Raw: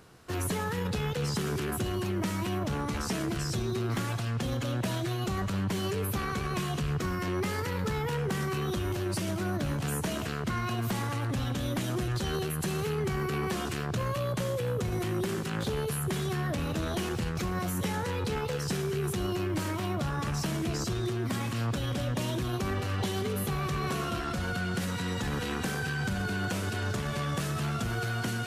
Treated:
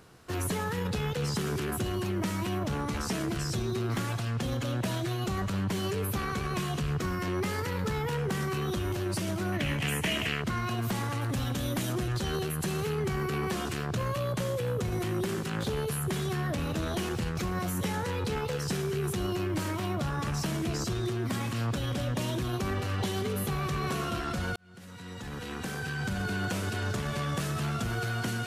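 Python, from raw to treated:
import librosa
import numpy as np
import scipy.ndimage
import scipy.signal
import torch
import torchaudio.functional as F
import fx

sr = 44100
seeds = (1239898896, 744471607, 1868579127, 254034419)

y = fx.band_shelf(x, sr, hz=2400.0, db=12.0, octaves=1.0, at=(9.52, 10.42))
y = fx.high_shelf(y, sr, hz=7800.0, db=7.0, at=(11.21, 11.93))
y = fx.edit(y, sr, fx.fade_in_span(start_s=24.56, length_s=1.74), tone=tone)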